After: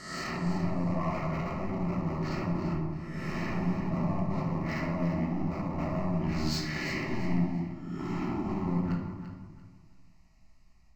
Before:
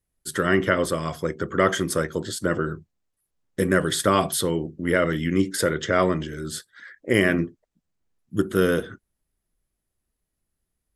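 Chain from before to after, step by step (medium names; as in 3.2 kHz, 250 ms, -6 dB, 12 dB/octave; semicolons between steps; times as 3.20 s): reverse spectral sustain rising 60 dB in 0.92 s; Bessel low-pass 5.1 kHz, order 2; low-pass that closes with the level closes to 310 Hz, closed at -16.5 dBFS; bass shelf 340 Hz -4.5 dB; level rider gain up to 12 dB; peak limiter -11.5 dBFS, peak gain reduction 8.5 dB; compression 4:1, threshold -29 dBFS, peak gain reduction 11.5 dB; overload inside the chain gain 30.5 dB; static phaser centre 2.3 kHz, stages 8; echo whose repeats swap between lows and highs 170 ms, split 1 kHz, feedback 51%, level -4 dB; on a send at -1 dB: reverberation RT60 1.1 s, pre-delay 5 ms; on the sum: trim +2.5 dB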